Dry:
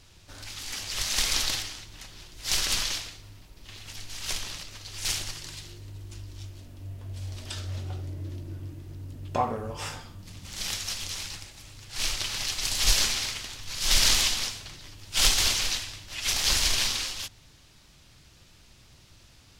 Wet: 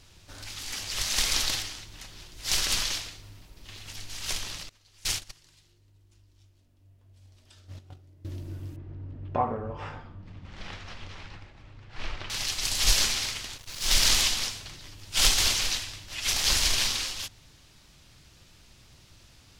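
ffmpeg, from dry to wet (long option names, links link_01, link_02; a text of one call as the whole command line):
ffmpeg -i in.wav -filter_complex "[0:a]asettb=1/sr,asplit=3[link_01][link_02][link_03];[link_01]atrim=end=4.694[link_04];[link_02]atrim=start=4.69:end=8.25,asetpts=PTS-STARTPTS,afade=type=in:duration=0.004:curve=qsin,afade=type=out:start_time=3.556:duration=0.004:curve=qsin,agate=range=-19dB:threshold=-32dB:ratio=16:release=100:detection=peak[link_05];[link_03]atrim=start=8.246[link_06];[link_04][link_05]acrossfade=duration=0.004:curve1=hsin:curve2=qsin[link_07];[link_07][link_06]acrossfade=duration=0.004:curve1=qsin:curve2=hsin,asettb=1/sr,asplit=3[link_08][link_09][link_10];[link_08]atrim=end=8.764[link_11];[link_09]atrim=start=8.76:end=12.3,asetpts=PTS-STARTPTS,afade=type=in:duration=0.004:curve=qsin,afade=type=out:start_time=3.536:duration=0.004:curve=qsin,lowpass=1800[link_12];[link_10]atrim=start=12.296[link_13];[link_11][link_12]acrossfade=duration=0.004:curve1=hsin:curve2=qsin[link_14];[link_14][link_13]acrossfade=duration=0.004:curve1=qsin:curve2=hsin,asplit=3[link_15][link_16][link_17];[link_15]afade=type=out:start_time=13.57:duration=0.02[link_18];[link_16]aeval=exprs='sgn(val(0))*max(abs(val(0))-0.0112,0)':channel_layout=same,afade=type=in:start_time=13.57:duration=0.02,afade=type=out:start_time=14.1:duration=0.02[link_19];[link_17]afade=type=in:start_time=14.1:duration=0.02[link_20];[link_18][link_19][link_20]amix=inputs=3:normalize=0" out.wav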